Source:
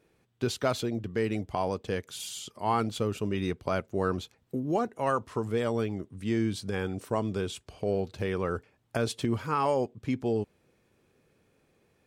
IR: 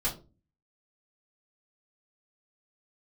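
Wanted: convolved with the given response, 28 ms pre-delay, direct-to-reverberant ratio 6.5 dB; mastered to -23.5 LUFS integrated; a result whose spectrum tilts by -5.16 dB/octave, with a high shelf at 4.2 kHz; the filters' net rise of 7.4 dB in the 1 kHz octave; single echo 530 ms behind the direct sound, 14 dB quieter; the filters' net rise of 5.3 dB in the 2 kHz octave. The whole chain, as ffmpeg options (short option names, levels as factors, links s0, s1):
-filter_complex "[0:a]equalizer=f=1000:t=o:g=8.5,equalizer=f=2000:t=o:g=5,highshelf=f=4200:g=-7,aecho=1:1:530:0.2,asplit=2[s0][s1];[1:a]atrim=start_sample=2205,adelay=28[s2];[s1][s2]afir=irnorm=-1:irlink=0,volume=0.237[s3];[s0][s3]amix=inputs=2:normalize=0,volume=1.5"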